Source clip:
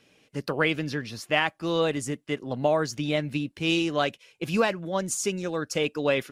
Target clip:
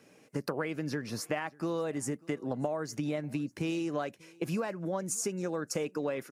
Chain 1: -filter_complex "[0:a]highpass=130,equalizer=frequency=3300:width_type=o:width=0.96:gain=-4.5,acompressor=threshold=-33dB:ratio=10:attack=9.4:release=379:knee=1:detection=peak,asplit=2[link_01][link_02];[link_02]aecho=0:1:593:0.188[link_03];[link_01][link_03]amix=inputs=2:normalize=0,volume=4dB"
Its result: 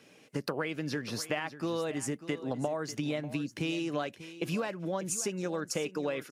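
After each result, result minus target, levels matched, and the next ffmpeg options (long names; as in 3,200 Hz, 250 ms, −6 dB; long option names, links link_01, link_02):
echo-to-direct +11 dB; 4,000 Hz band +4.5 dB
-filter_complex "[0:a]highpass=130,equalizer=frequency=3300:width_type=o:width=0.96:gain=-4.5,acompressor=threshold=-33dB:ratio=10:attack=9.4:release=379:knee=1:detection=peak,asplit=2[link_01][link_02];[link_02]aecho=0:1:593:0.0531[link_03];[link_01][link_03]amix=inputs=2:normalize=0,volume=4dB"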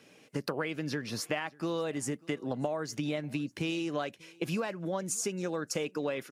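4,000 Hz band +4.5 dB
-filter_complex "[0:a]highpass=130,equalizer=frequency=3300:width_type=o:width=0.96:gain=-13,acompressor=threshold=-33dB:ratio=10:attack=9.4:release=379:knee=1:detection=peak,asplit=2[link_01][link_02];[link_02]aecho=0:1:593:0.0531[link_03];[link_01][link_03]amix=inputs=2:normalize=0,volume=4dB"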